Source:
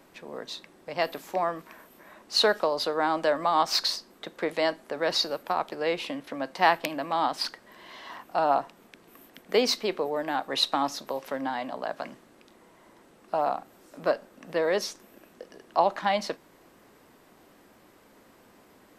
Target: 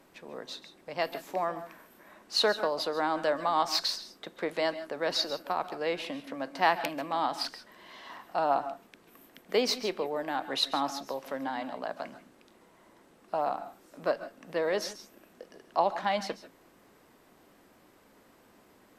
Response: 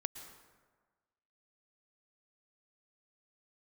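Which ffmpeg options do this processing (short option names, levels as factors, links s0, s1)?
-filter_complex "[1:a]atrim=start_sample=2205,afade=t=out:st=0.18:d=0.01,atrim=end_sample=8379,asetrate=36162,aresample=44100[s0];[0:a][s0]afir=irnorm=-1:irlink=0,volume=0.708"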